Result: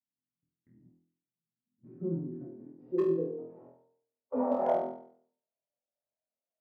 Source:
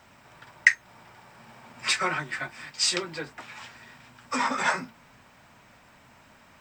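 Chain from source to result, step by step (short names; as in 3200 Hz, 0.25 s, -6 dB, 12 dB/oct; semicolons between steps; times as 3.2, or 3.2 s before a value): gate -43 dBFS, range -49 dB; low shelf 350 Hz +8.5 dB; de-hum 76.49 Hz, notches 16; AM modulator 180 Hz, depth 35%; in parallel at -1 dB: compressor 6:1, threshold -34 dBFS, peak gain reduction 20 dB; on the sum: band-pass sweep 320 Hz -> 650 Hz, 1.61–4.22; harmonic-percussive split percussive -12 dB; low-pass sweep 180 Hz -> 580 Hz, 1.69–4.6; overloaded stage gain 26 dB; on a send: flutter echo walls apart 4.1 m, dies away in 0.56 s; on the sum: gain +4.5 dB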